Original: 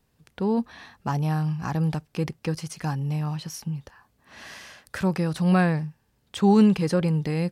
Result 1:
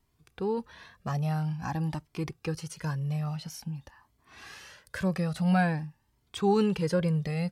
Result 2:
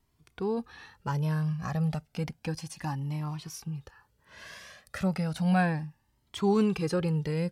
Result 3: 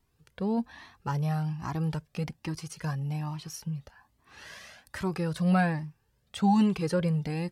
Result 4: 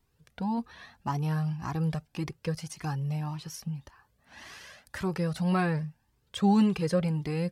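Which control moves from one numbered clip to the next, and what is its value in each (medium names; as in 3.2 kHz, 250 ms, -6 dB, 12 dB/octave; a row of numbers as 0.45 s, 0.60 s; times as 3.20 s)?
Shepard-style flanger, rate: 0.49 Hz, 0.32 Hz, 1.2 Hz, 1.8 Hz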